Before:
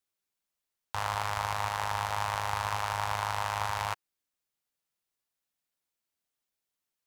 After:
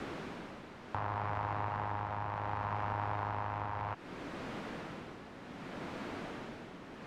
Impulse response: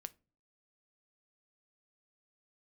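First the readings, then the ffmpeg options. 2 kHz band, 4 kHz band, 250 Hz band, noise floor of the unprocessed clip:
-7.0 dB, -12.5 dB, +12.0 dB, under -85 dBFS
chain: -filter_complex "[0:a]aeval=exprs='val(0)+0.5*0.0237*sgn(val(0))':c=same,lowpass=1800,equalizer=f=230:w=0.56:g=12.5,tremolo=f=0.66:d=0.62,acrossover=split=430|1200[s0][s1][s2];[s0]acompressor=threshold=0.00501:ratio=4[s3];[s1]acompressor=threshold=0.00708:ratio=4[s4];[s2]acompressor=threshold=0.00447:ratio=4[s5];[s3][s4][s5]amix=inputs=3:normalize=0,volume=1.5"

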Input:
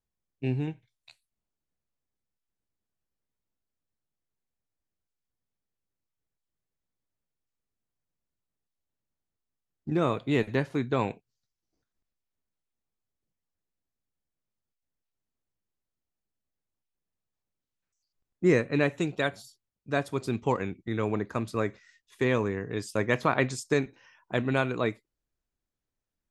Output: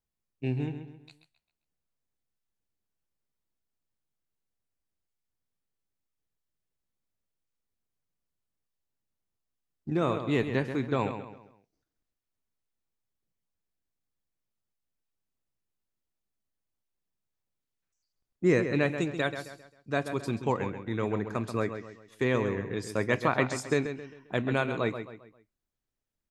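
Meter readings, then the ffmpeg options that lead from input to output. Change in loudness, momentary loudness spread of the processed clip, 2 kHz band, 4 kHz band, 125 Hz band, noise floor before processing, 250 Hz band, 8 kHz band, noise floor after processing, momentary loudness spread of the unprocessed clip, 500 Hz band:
-1.0 dB, 15 LU, -1.0 dB, -1.0 dB, -1.0 dB, under -85 dBFS, -1.0 dB, -1.5 dB, under -85 dBFS, 8 LU, -1.0 dB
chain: -filter_complex "[0:a]asplit=2[s0][s1];[s1]adelay=133,lowpass=f=5000:p=1,volume=0.355,asplit=2[s2][s3];[s3]adelay=133,lowpass=f=5000:p=1,volume=0.39,asplit=2[s4][s5];[s5]adelay=133,lowpass=f=5000:p=1,volume=0.39,asplit=2[s6][s7];[s7]adelay=133,lowpass=f=5000:p=1,volume=0.39[s8];[s0][s2][s4][s6][s8]amix=inputs=5:normalize=0,volume=0.841"

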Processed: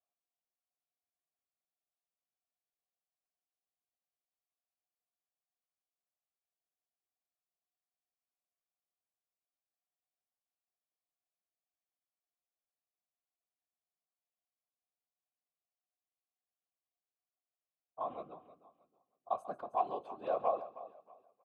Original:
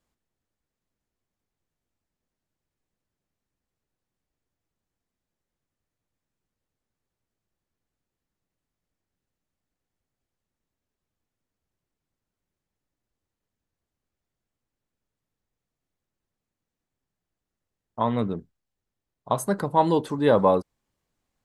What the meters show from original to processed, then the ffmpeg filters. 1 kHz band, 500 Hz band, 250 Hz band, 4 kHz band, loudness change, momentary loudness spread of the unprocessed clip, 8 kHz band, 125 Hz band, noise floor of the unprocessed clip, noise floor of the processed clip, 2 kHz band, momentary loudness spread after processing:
-11.0 dB, -15.0 dB, -28.0 dB, under -20 dB, -15.0 dB, 10 LU, under -30 dB, -33.5 dB, under -85 dBFS, under -85 dBFS, -22.0 dB, 18 LU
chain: -filter_complex "[0:a]asoftclip=type=hard:threshold=0.316,asplit=2[s0][s1];[s1]aecho=0:1:316|632|948:0.158|0.0444|0.0124[s2];[s0][s2]amix=inputs=2:normalize=0,afftfilt=real='hypot(re,im)*cos(2*PI*random(0))':imag='hypot(re,im)*sin(2*PI*random(1))':win_size=512:overlap=0.75,asplit=3[s3][s4][s5];[s3]bandpass=f=730:t=q:w=8,volume=1[s6];[s4]bandpass=f=1090:t=q:w=8,volume=0.501[s7];[s5]bandpass=f=2440:t=q:w=8,volume=0.355[s8];[s6][s7][s8]amix=inputs=3:normalize=0,asplit=2[s9][s10];[s10]aecho=0:1:140:0.133[s11];[s9][s11]amix=inputs=2:normalize=0,volume=1.12"

